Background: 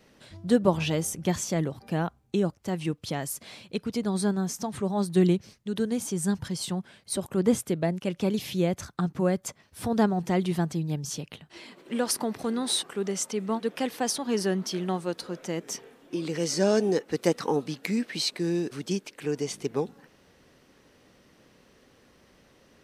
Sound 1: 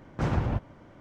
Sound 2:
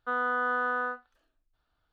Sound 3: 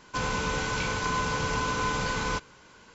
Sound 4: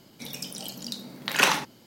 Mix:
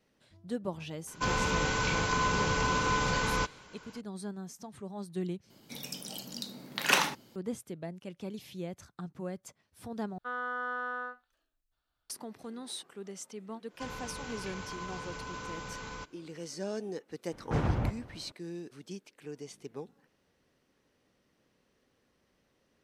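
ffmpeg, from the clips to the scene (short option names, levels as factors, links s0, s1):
-filter_complex "[3:a]asplit=2[s0][s1];[0:a]volume=0.2[s2];[2:a]highshelf=f=2600:g=7.5[s3];[s1]alimiter=limit=0.1:level=0:latency=1:release=32[s4];[1:a]aecho=1:1:256:0.0794[s5];[s2]asplit=3[s6][s7][s8];[s6]atrim=end=5.504[s9];[4:a]atrim=end=1.86,asetpts=PTS-STARTPTS,volume=0.596[s10];[s7]atrim=start=7.356:end=10.184[s11];[s3]atrim=end=1.92,asetpts=PTS-STARTPTS,volume=0.376[s12];[s8]atrim=start=12.096[s13];[s0]atrim=end=2.94,asetpts=PTS-STARTPTS,volume=0.944,afade=t=in:d=0.004:c=hsin,afade=t=out:st=2.936:d=0.004:c=hsin,adelay=1070[s14];[s4]atrim=end=2.94,asetpts=PTS-STARTPTS,volume=0.237,afade=t=in:d=0.1,afade=t=out:st=2.84:d=0.1,adelay=13660[s15];[s5]atrim=end=1,asetpts=PTS-STARTPTS,volume=0.75,afade=t=in:d=0.004:c=hsin,afade=t=out:st=0.996:d=0.004:c=hsin,adelay=763812S[s16];[s9][s10]acrossfade=d=0.004:c1=hsin:c2=hsin[s17];[s17][s11]acrossfade=d=0.004:c1=hsin:c2=hsin[s18];[s18][s12]acrossfade=d=0.004:c1=hsin:c2=hsin[s19];[s19][s13]acrossfade=d=0.004:c1=hsin:c2=hsin[s20];[s20][s14][s15][s16]amix=inputs=4:normalize=0"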